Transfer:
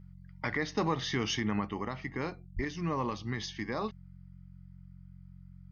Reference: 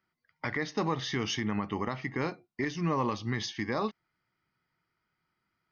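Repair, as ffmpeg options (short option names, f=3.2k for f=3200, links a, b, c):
-filter_complex "[0:a]bandreject=f=45.1:t=h:w=4,bandreject=f=90.2:t=h:w=4,bandreject=f=135.3:t=h:w=4,bandreject=f=180.4:t=h:w=4,asplit=3[a][b][c];[a]afade=t=out:st=2.55:d=0.02[d];[b]highpass=f=140:w=0.5412,highpass=f=140:w=1.3066,afade=t=in:st=2.55:d=0.02,afade=t=out:st=2.67:d=0.02[e];[c]afade=t=in:st=2.67:d=0.02[f];[d][e][f]amix=inputs=3:normalize=0,asetnsamples=n=441:p=0,asendcmd='1.67 volume volume 3.5dB',volume=0dB"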